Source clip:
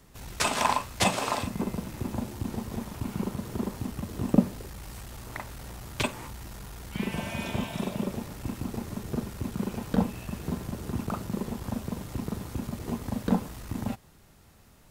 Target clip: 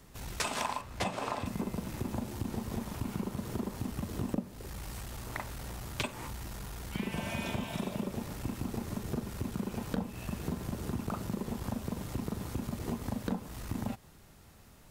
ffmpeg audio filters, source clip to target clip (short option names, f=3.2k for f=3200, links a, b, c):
-filter_complex "[0:a]asettb=1/sr,asplit=3[a][b][c];[a]atrim=end=0.814[d];[b]atrim=start=0.81:end=1.46,asetpts=PTS-STARTPTS,afade=t=in:d=0.004:c=qsin,afade=t=out:st=0.646:d=0.004:c=qsin,highshelf=f=3.1k:g=-10[e];[c]atrim=start=1.456[f];[d][e]acrossfade=d=0.004:c1=hsin:c2=qsin[g];[g][f]acrossfade=d=0.004:c1=qsin:c2=hsin,acompressor=threshold=-31dB:ratio=5"